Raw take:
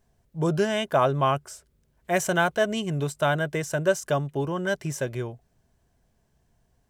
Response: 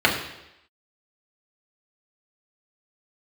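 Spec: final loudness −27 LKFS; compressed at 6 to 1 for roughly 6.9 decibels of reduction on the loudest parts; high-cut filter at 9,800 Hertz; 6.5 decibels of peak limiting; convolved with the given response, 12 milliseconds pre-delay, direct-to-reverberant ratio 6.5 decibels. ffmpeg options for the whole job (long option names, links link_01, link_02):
-filter_complex "[0:a]lowpass=9800,acompressor=threshold=-24dB:ratio=6,alimiter=limit=-21.5dB:level=0:latency=1,asplit=2[link_01][link_02];[1:a]atrim=start_sample=2205,adelay=12[link_03];[link_02][link_03]afir=irnorm=-1:irlink=0,volume=-26.5dB[link_04];[link_01][link_04]amix=inputs=2:normalize=0,volume=4dB"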